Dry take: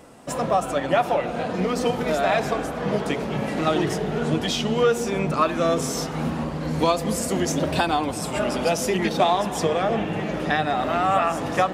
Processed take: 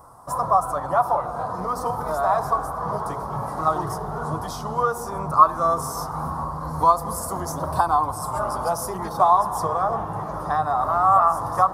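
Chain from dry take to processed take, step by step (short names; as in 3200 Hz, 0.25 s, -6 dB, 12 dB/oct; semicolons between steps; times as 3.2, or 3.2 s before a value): EQ curve 120 Hz 0 dB, 220 Hz -16 dB, 540 Hz -9 dB, 1100 Hz +9 dB, 1700 Hz -13 dB, 2600 Hz -29 dB, 5100 Hz -9 dB, 7300 Hz -11 dB, 10000 Hz +1 dB; gain +2.5 dB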